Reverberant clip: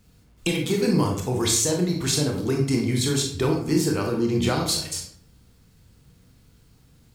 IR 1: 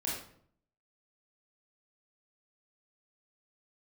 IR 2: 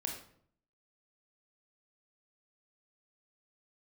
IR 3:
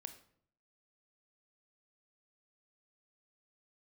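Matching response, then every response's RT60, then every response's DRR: 2; 0.60, 0.60, 0.60 s; -5.5, 1.0, 8.5 dB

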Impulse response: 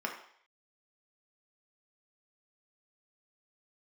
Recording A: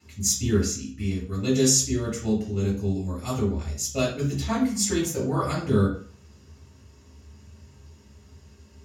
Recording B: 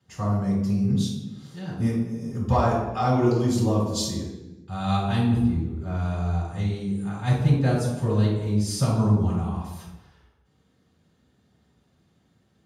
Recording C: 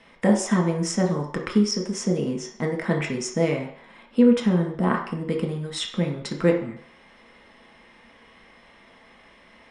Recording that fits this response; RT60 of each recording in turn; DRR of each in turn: C; 0.45 s, not exponential, 0.60 s; -5.5, -9.5, 0.5 dB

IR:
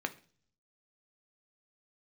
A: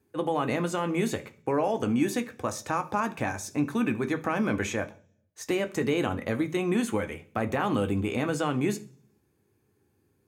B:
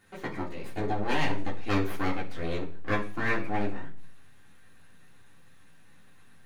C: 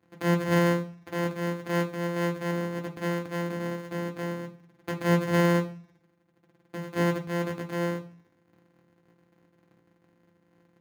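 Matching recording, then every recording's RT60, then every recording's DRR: A; 0.45, 0.45, 0.45 s; 7.0, -5.5, 1.5 dB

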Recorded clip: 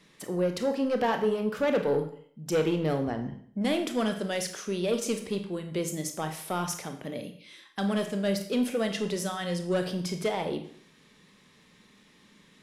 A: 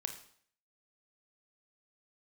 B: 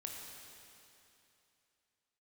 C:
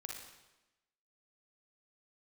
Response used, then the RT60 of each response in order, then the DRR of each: A; 0.55, 2.9, 1.0 s; 5.5, -0.5, -0.5 dB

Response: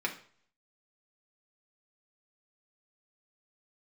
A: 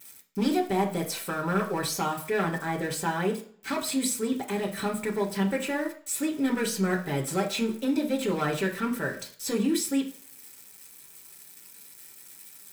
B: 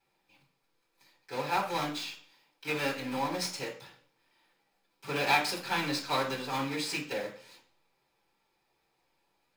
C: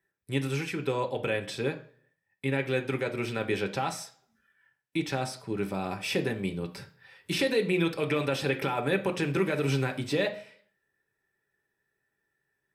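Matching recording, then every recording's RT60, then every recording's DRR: A; 0.50, 0.50, 0.50 s; -1.0, -10.5, 4.0 dB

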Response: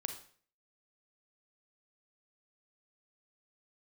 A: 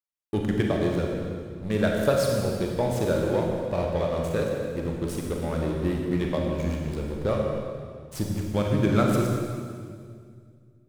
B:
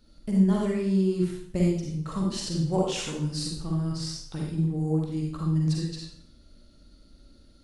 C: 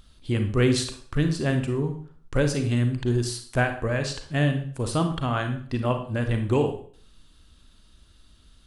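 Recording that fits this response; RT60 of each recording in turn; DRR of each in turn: C; 2.1, 0.65, 0.50 s; -0.5, -2.5, 6.0 dB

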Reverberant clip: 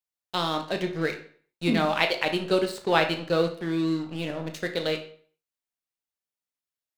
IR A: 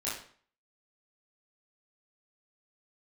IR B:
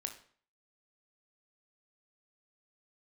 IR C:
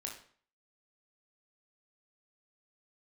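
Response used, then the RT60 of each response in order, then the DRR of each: B; 0.50, 0.50, 0.50 s; -9.0, 5.0, 0.0 dB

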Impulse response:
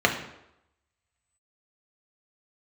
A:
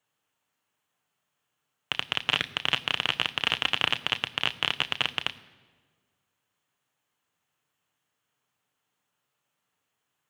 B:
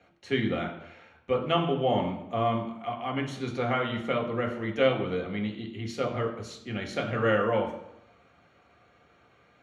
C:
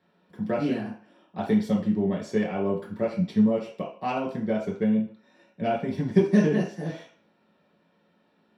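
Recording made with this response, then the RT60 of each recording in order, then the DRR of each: B; 1.5, 0.85, 0.45 s; 10.0, 1.0, -4.0 dB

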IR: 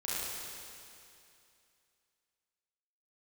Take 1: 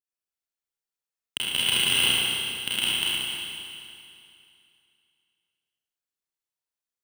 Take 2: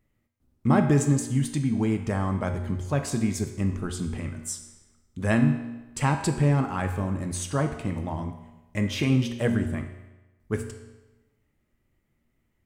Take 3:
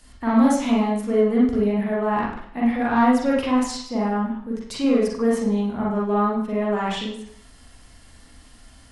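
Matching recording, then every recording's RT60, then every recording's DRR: 1; 2.6, 1.1, 0.60 s; -9.5, 5.0, -5.0 dB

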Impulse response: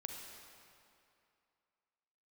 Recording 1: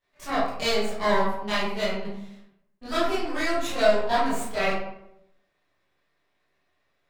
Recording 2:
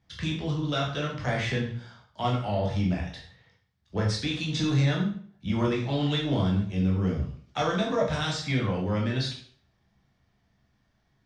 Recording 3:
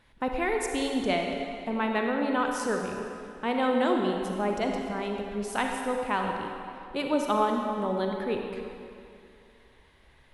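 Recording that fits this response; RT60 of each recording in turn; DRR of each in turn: 3; 0.80, 0.50, 2.6 s; -12.0, -2.5, 1.5 dB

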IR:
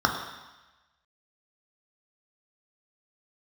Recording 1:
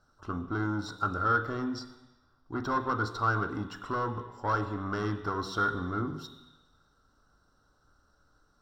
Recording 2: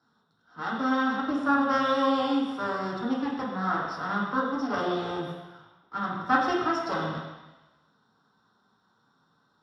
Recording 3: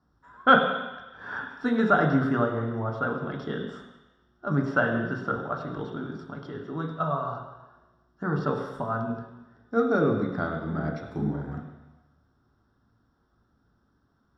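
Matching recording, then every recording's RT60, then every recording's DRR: 3; 1.1, 1.1, 1.1 s; 8.5, -3.5, 2.5 dB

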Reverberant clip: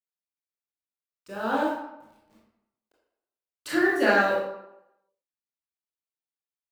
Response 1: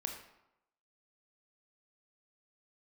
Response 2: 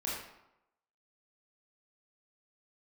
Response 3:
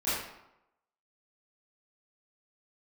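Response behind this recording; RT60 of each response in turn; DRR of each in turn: 2; 0.85, 0.85, 0.85 s; 2.5, -6.5, -14.5 dB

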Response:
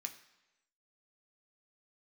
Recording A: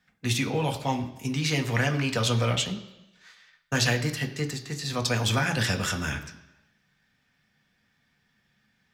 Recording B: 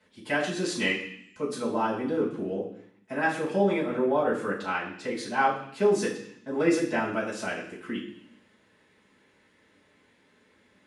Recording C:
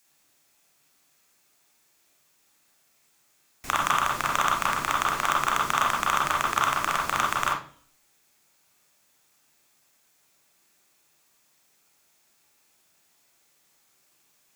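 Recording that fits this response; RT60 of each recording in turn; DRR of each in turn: A; 1.0, 0.65, 0.45 s; 4.0, -9.5, -2.0 dB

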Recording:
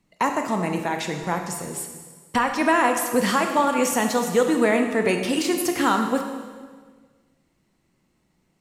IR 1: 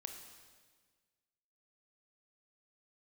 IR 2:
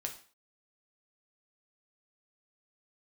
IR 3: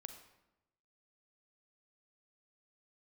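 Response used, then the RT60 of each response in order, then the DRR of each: 1; 1.6, 0.45, 0.95 s; 4.0, 2.0, 7.0 dB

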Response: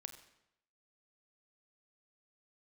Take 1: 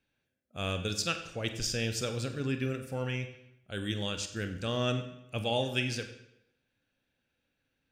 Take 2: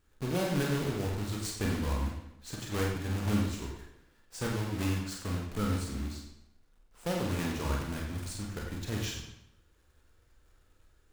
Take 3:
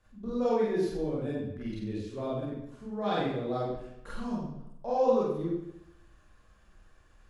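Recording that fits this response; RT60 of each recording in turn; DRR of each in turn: 1; 0.80, 0.80, 0.80 s; 7.0, -1.0, -8.0 dB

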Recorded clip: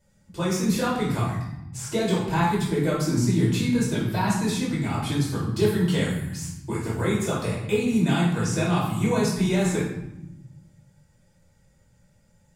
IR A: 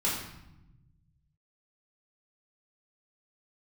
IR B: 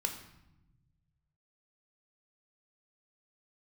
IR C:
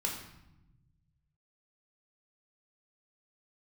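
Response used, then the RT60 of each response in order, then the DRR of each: A; 0.90, 0.90, 0.90 s; -7.0, 4.0, -1.0 dB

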